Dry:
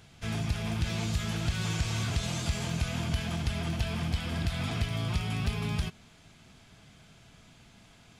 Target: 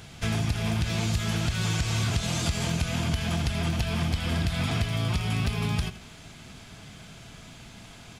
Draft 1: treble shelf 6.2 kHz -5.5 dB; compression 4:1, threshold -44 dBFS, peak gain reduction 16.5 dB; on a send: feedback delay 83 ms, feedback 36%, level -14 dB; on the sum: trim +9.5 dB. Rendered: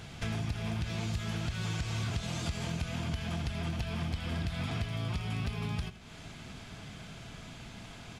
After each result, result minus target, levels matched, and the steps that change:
compression: peak gain reduction +7.5 dB; 8 kHz band -3.0 dB
change: compression 4:1, threshold -34 dBFS, peak gain reduction 9 dB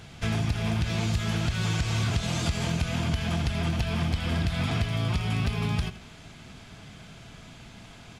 8 kHz band -4.0 dB
change: treble shelf 6.2 kHz +2 dB

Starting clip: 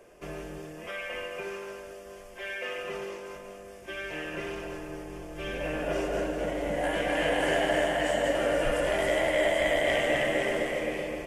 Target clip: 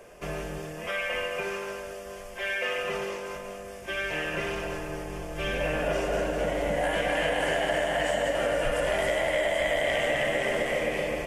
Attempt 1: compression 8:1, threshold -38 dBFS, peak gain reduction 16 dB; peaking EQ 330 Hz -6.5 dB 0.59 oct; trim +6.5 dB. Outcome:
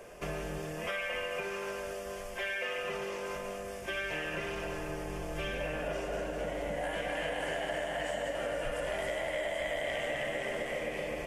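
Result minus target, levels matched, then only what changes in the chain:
compression: peak gain reduction +8.5 dB
change: compression 8:1, threshold -28.5 dBFS, peak gain reduction 8 dB

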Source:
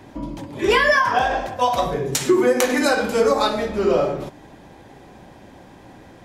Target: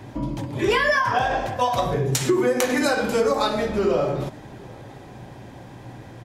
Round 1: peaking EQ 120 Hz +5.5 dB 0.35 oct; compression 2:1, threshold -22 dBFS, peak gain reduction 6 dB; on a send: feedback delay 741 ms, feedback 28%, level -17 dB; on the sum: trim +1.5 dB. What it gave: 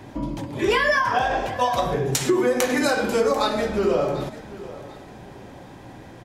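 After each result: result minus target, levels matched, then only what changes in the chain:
echo-to-direct +9 dB; 125 Hz band -3.5 dB
change: feedback delay 741 ms, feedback 28%, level -26 dB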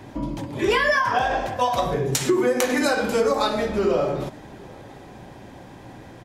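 125 Hz band -3.5 dB
change: peaking EQ 120 Hz +13 dB 0.35 oct

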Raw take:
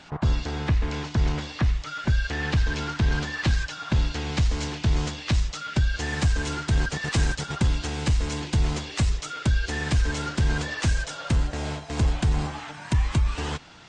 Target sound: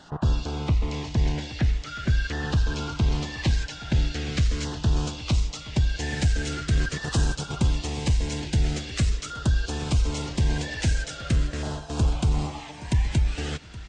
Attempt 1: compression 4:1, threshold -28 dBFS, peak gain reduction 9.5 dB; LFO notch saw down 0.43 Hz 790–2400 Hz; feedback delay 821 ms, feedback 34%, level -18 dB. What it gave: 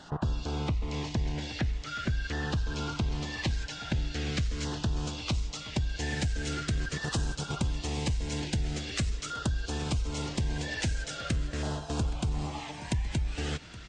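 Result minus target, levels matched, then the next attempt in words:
compression: peak gain reduction +9.5 dB
LFO notch saw down 0.43 Hz 790–2400 Hz; feedback delay 821 ms, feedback 34%, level -18 dB

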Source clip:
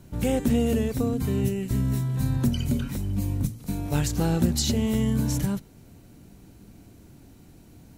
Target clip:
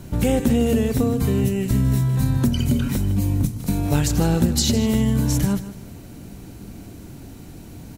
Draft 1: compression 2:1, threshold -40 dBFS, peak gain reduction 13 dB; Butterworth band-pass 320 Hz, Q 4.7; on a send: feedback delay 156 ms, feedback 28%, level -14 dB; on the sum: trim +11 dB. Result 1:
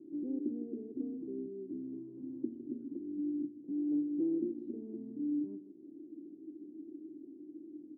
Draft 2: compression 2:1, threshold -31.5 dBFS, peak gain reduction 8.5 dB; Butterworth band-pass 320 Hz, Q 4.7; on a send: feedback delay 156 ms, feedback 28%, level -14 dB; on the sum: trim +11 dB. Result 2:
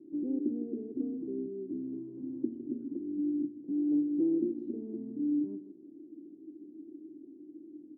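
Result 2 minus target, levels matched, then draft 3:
250 Hz band +3.5 dB
compression 2:1, threshold -31.5 dBFS, peak gain reduction 8.5 dB; on a send: feedback delay 156 ms, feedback 28%, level -14 dB; on the sum: trim +11 dB

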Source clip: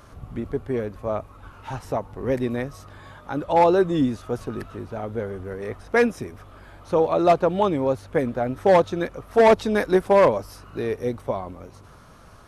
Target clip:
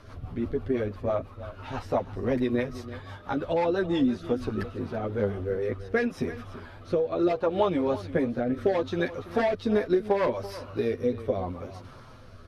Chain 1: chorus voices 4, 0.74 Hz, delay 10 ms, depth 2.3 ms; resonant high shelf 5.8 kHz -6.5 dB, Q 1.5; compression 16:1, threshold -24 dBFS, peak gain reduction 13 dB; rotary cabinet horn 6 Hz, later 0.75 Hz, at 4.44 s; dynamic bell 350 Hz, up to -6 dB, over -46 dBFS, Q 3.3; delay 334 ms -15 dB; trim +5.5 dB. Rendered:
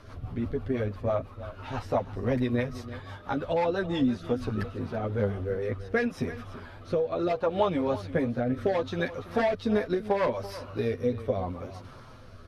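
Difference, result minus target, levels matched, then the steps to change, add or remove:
125 Hz band +3.5 dB
change: dynamic bell 120 Hz, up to -6 dB, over -46 dBFS, Q 3.3

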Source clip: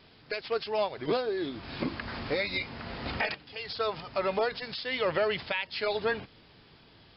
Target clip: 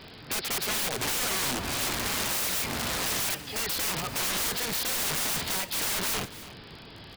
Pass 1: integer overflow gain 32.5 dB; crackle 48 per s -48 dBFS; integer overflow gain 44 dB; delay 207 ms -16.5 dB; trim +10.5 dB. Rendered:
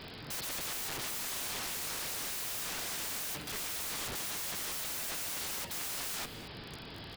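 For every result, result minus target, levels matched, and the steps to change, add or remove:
echo 83 ms early; second integer overflow: distortion +4 dB
change: delay 290 ms -16.5 dB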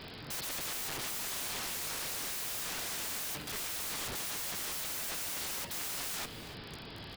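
second integer overflow: distortion +4 dB
change: second integer overflow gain 35.5 dB

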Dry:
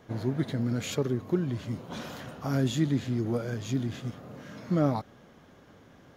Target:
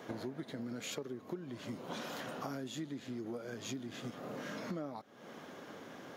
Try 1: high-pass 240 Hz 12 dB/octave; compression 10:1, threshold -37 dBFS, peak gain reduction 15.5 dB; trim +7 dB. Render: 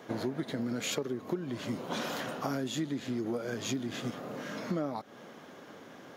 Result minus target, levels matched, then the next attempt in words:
compression: peak gain reduction -8 dB
high-pass 240 Hz 12 dB/octave; compression 10:1, threshold -46 dBFS, peak gain reduction 23.5 dB; trim +7 dB

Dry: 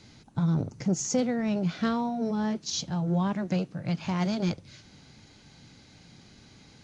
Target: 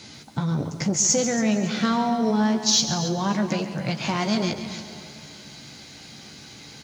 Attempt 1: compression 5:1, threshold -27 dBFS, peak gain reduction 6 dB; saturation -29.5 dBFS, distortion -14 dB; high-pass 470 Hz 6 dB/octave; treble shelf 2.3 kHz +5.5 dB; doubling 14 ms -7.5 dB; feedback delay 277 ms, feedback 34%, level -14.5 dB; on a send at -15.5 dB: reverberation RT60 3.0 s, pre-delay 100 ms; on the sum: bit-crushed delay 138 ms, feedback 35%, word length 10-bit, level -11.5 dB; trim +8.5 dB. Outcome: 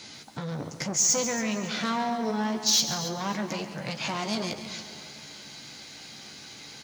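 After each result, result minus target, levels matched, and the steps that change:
saturation: distortion +16 dB; 125 Hz band -5.0 dB
change: saturation -18.5 dBFS, distortion -30 dB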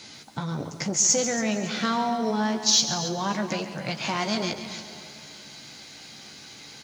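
125 Hz band -4.5 dB
change: high-pass 160 Hz 6 dB/octave

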